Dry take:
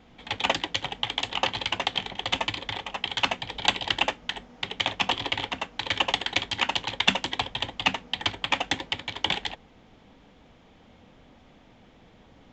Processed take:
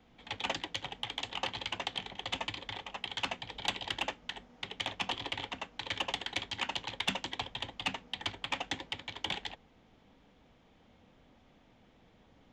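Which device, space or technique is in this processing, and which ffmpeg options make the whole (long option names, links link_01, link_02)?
one-band saturation: -filter_complex "[0:a]acrossover=split=200|4300[link_01][link_02][link_03];[link_02]asoftclip=type=tanh:threshold=-15dB[link_04];[link_01][link_04][link_03]amix=inputs=3:normalize=0,volume=-8.5dB"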